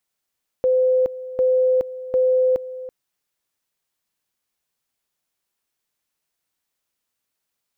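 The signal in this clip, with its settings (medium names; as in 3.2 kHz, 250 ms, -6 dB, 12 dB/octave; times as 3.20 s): two-level tone 512 Hz -14 dBFS, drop 15.5 dB, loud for 0.42 s, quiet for 0.33 s, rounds 3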